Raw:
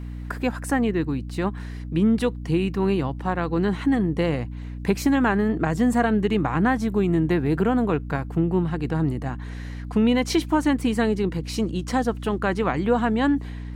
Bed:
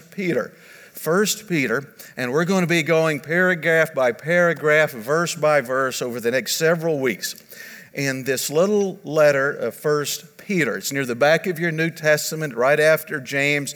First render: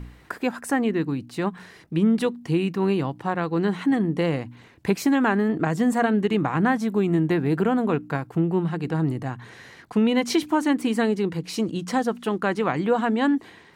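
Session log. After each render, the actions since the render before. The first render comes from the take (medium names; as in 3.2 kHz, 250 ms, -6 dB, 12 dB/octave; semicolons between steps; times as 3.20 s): de-hum 60 Hz, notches 5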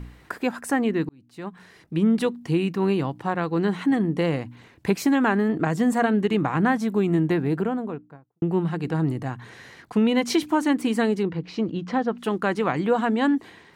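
1.09–2.10 s: fade in; 7.20–8.42 s: studio fade out; 11.23–12.18 s: distance through air 220 m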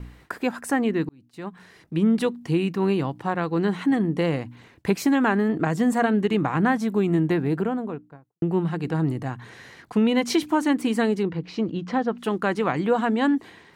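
gate with hold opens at -42 dBFS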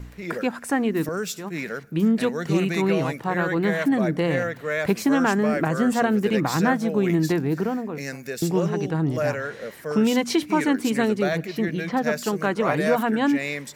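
add bed -10 dB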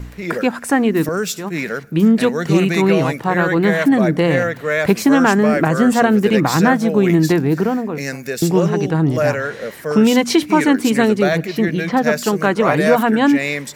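trim +7.5 dB; peak limiter -1 dBFS, peak gain reduction 1.5 dB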